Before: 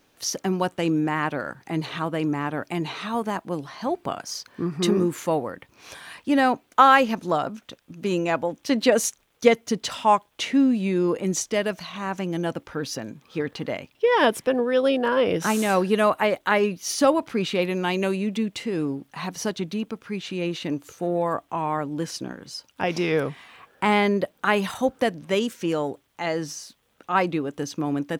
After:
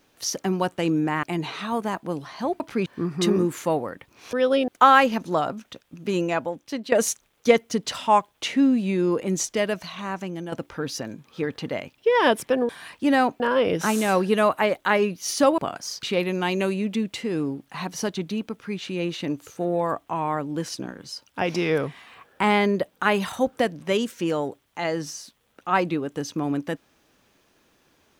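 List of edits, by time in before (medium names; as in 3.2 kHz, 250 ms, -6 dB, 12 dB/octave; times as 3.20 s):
1.23–2.65 s: delete
4.02–4.47 s: swap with 17.19–17.45 s
5.94–6.65 s: swap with 14.66–15.01 s
8.20–8.89 s: fade out linear, to -13.5 dB
11.96–12.49 s: fade out, to -9 dB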